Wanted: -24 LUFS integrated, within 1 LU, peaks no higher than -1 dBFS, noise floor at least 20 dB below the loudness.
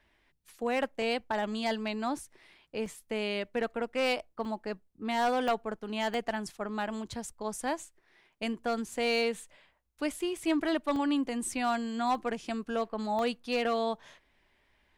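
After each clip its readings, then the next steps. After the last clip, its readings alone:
clipped samples 0.3%; clipping level -21.0 dBFS; dropouts 8; longest dropout 1.3 ms; loudness -32.5 LUFS; peak level -21.0 dBFS; loudness target -24.0 LUFS
-> clip repair -21 dBFS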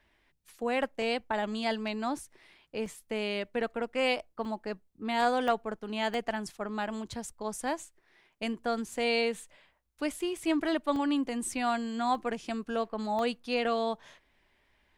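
clipped samples 0.0%; dropouts 8; longest dropout 1.3 ms
-> interpolate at 1.02/2.86/4.45/5.48/6.14/10.96/12.15/13.19 s, 1.3 ms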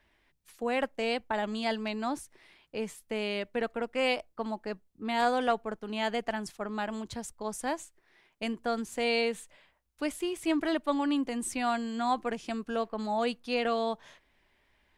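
dropouts 0; loudness -32.0 LUFS; peak level -13.5 dBFS; loudness target -24.0 LUFS
-> trim +8 dB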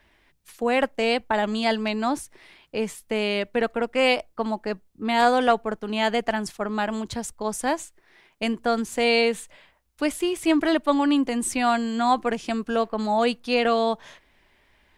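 loudness -24.0 LUFS; peak level -5.5 dBFS; noise floor -63 dBFS

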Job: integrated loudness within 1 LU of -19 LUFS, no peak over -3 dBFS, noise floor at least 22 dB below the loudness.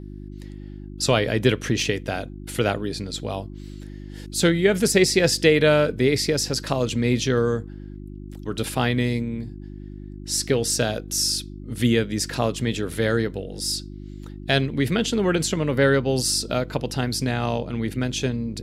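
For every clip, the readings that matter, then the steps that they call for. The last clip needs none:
hum 50 Hz; highest harmonic 350 Hz; hum level -34 dBFS; loudness -22.5 LUFS; peak level -4.5 dBFS; loudness target -19.0 LUFS
-> de-hum 50 Hz, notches 7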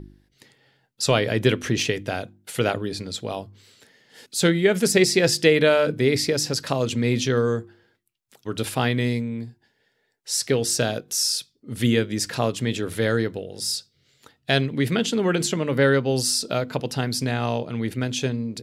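hum not found; loudness -23.0 LUFS; peak level -4.5 dBFS; loudness target -19.0 LUFS
-> trim +4 dB; peak limiter -3 dBFS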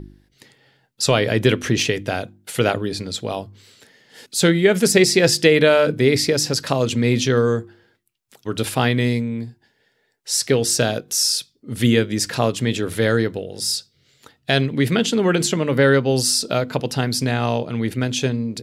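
loudness -19.0 LUFS; peak level -3.0 dBFS; noise floor -66 dBFS

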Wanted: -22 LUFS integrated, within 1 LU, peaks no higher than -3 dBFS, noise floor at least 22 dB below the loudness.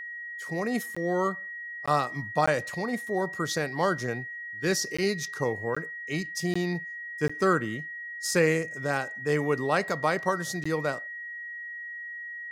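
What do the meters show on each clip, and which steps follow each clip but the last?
dropouts 8; longest dropout 15 ms; steady tone 1.9 kHz; tone level -36 dBFS; loudness -29.0 LUFS; peak level -10.0 dBFS; loudness target -22.0 LUFS
-> interpolate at 0.95/1.86/2.46/4.97/5.75/6.54/7.28/10.64 s, 15 ms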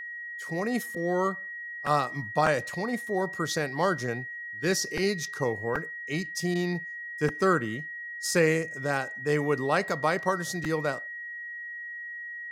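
dropouts 0; steady tone 1.9 kHz; tone level -36 dBFS
-> band-stop 1.9 kHz, Q 30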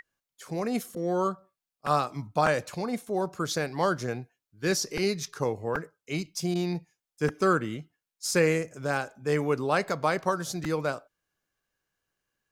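steady tone not found; loudness -29.0 LUFS; peak level -10.5 dBFS; loudness target -22.0 LUFS
-> trim +7 dB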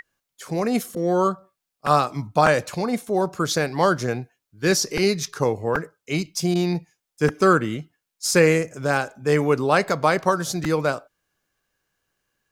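loudness -22.0 LUFS; peak level -3.5 dBFS; noise floor -83 dBFS

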